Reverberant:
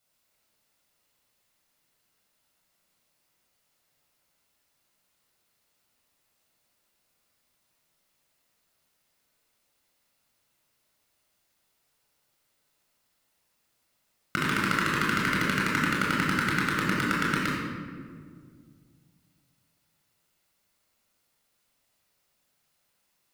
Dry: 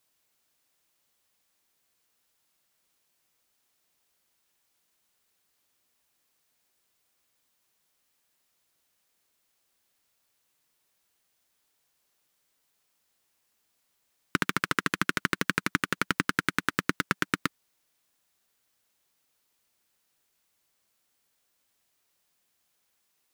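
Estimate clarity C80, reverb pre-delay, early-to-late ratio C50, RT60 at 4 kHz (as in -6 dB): 1.5 dB, 21 ms, -0.5 dB, 1.1 s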